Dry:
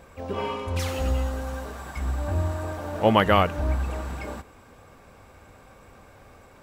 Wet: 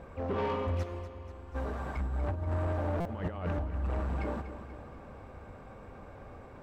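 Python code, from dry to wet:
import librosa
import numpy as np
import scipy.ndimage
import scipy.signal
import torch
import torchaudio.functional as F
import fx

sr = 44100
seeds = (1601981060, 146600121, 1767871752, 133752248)

y = fx.lowpass(x, sr, hz=1000.0, slope=6)
y = fx.over_compress(y, sr, threshold_db=-28.0, ratio=-0.5)
y = 10.0 ** (-27.5 / 20.0) * np.tanh(y / 10.0 ** (-27.5 / 20.0))
y = fx.comb_fb(y, sr, f0_hz=350.0, decay_s=0.38, harmonics='all', damping=0.0, mix_pct=90, at=(0.82, 1.54), fade=0.02)
y = fx.echo_feedback(y, sr, ms=242, feedback_pct=58, wet_db=-12.0)
y = fx.buffer_glitch(y, sr, at_s=(3.0,), block=256, repeats=8)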